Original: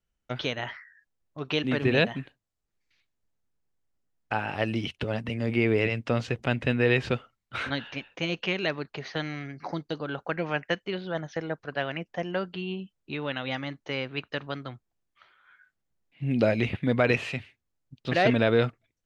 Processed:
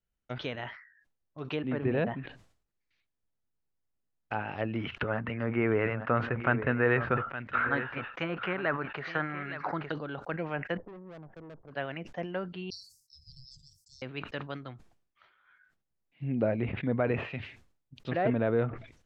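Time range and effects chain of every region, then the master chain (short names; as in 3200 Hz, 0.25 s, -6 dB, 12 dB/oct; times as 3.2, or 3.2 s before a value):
4.75–9.92 bell 1400 Hz +15 dB 1.3 oct + echo 0.865 s -14 dB
10.77–11.71 inverse Chebyshev low-pass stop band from 4000 Hz, stop band 70 dB + tube stage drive 39 dB, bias 0.7
12.7–14.02 tone controls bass +8 dB, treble +14 dB + ring modulator 1400 Hz + Chebyshev band-stop 150–4900 Hz, order 5
whole clip: treble ducked by the level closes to 1500 Hz, closed at -22.5 dBFS; high shelf 4700 Hz -8 dB; sustainer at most 99 dB/s; gain -5 dB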